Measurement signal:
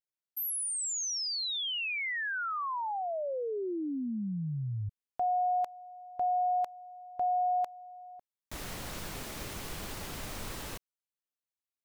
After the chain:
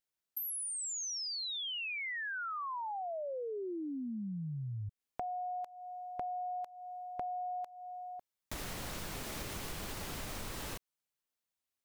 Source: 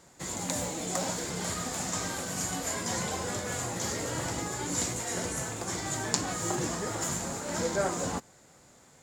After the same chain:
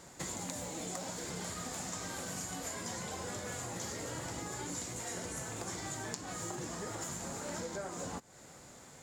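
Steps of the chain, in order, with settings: compression 12:1, threshold -41 dBFS; trim +3.5 dB

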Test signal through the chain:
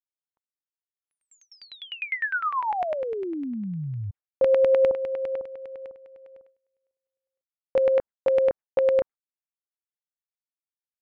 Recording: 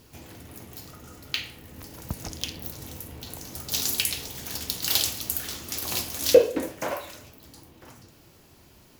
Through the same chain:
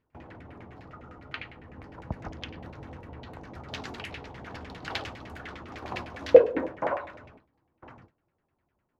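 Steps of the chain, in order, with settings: LFO low-pass saw down 9.9 Hz 660–2300 Hz; gate with hold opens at -39 dBFS; trim -2 dB

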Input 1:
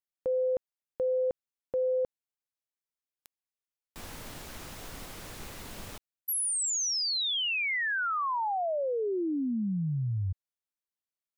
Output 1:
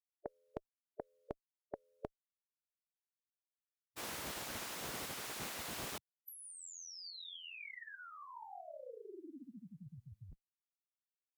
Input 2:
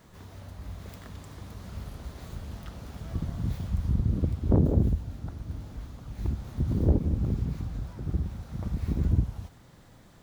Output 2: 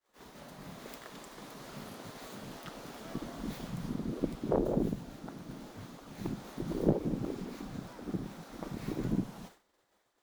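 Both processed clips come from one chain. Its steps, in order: expander -42 dBFS; spectral gate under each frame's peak -10 dB weak; Chebyshev shaper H 8 -44 dB, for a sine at -14 dBFS; trim +2.5 dB

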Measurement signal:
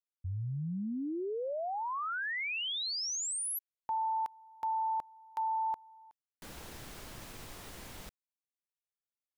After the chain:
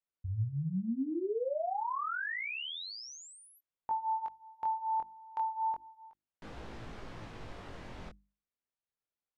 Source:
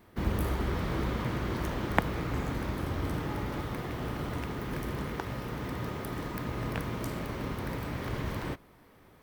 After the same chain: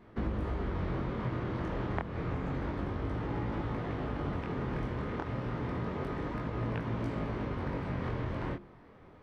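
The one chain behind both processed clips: hum notches 50/100/150/200/250/300/350 Hz; compression 6:1, threshold -34 dBFS; chorus 0.29 Hz, delay 18 ms, depth 7 ms; tape spacing loss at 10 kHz 26 dB; trim +7.5 dB

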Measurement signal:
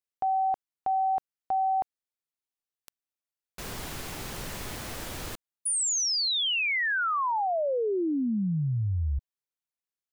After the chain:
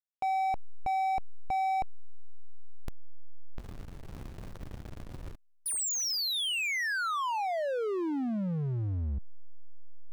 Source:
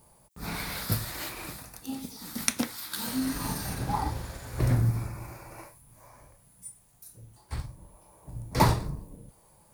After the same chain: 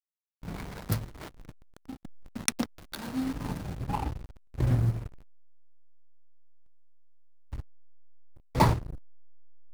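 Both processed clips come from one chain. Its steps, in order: hysteresis with a dead band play -24.5 dBFS

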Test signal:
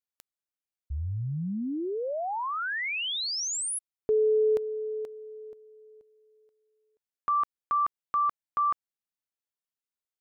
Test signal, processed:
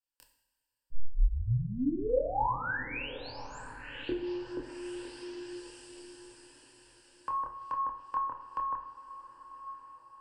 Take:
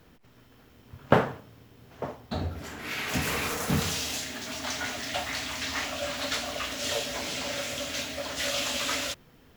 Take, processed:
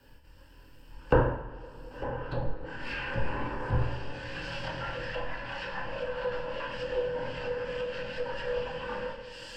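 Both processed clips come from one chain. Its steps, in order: rippled EQ curve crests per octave 1.3, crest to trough 12 dB; echo that smears into a reverb 1070 ms, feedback 41%, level -14 dB; frequency shift -77 Hz; chorus voices 6, 0.39 Hz, delay 26 ms, depth 2.1 ms; low-pass that closes with the level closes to 1.2 kHz, closed at -29 dBFS; two-slope reverb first 0.69 s, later 3.3 s, from -16 dB, DRR 3.5 dB

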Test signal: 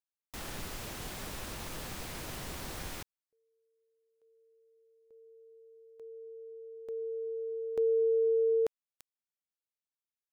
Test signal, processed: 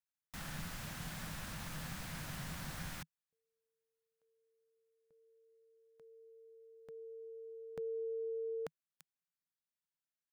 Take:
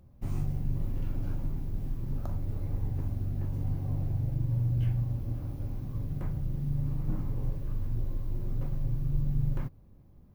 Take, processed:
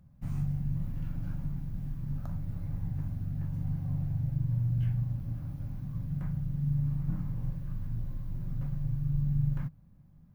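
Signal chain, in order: fifteen-band graphic EQ 160 Hz +11 dB, 400 Hz -11 dB, 1.6 kHz +5 dB; trim -5 dB

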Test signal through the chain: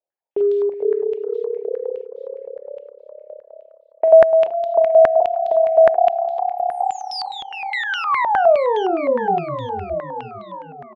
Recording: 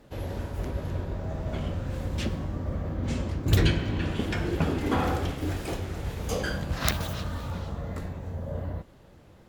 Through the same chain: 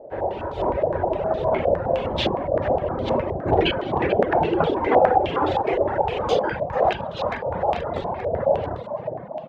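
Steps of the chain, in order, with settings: doubling 42 ms -7 dB; modulation noise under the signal 31 dB; high-order bell 570 Hz +12 dB; hum notches 50/100/150/200/250/300/350/400/450 Hz; level rider gain up to 5.5 dB; on a send: frequency-shifting echo 439 ms, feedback 57%, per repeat +34 Hz, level -7.5 dB; on the sum: compression 3:1, threshold -14 dBFS; bass shelf 86 Hz -8 dB; reverb removal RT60 1.3 s; step-sequenced low-pass 9.7 Hz 630–3600 Hz; trim -1 dB

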